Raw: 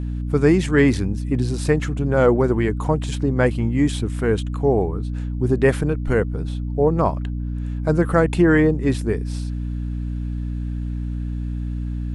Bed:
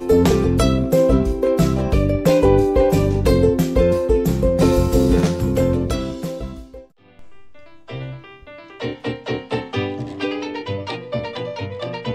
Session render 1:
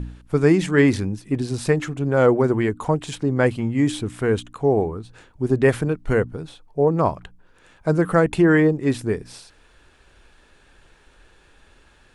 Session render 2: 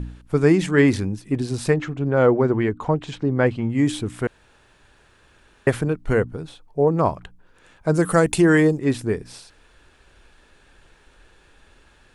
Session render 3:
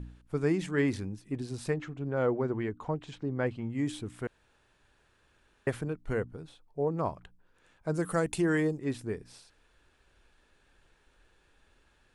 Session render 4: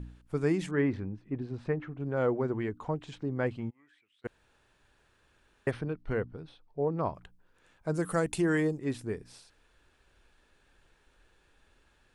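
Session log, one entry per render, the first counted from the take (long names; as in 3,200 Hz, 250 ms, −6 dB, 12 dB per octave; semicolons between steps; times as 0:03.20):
hum removal 60 Hz, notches 5
0:01.74–0:03.70: high-frequency loss of the air 120 metres; 0:04.27–0:05.67: fill with room tone; 0:07.94–0:08.79: bass and treble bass 0 dB, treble +14 dB
level −12 dB
0:00.71–0:02.00: low-pass filter 2,000 Hz; 0:03.69–0:04.24: resonant band-pass 820 Hz → 4,300 Hz, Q 14; 0:05.71–0:07.15: Savitzky-Golay smoothing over 15 samples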